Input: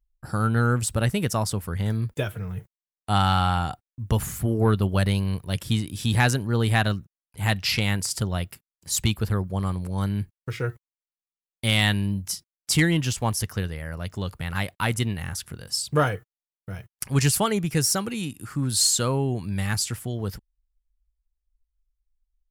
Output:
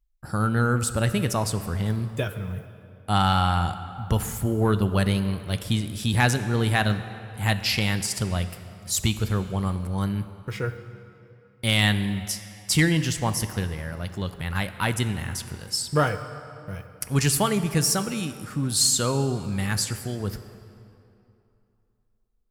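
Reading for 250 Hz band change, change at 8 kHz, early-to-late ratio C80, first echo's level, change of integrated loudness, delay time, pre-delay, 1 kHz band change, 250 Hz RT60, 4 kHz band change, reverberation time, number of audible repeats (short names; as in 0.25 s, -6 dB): +0.5 dB, 0.0 dB, 12.0 dB, none, 0.0 dB, none, 3 ms, +0.5 dB, 2.8 s, +0.5 dB, 2.8 s, none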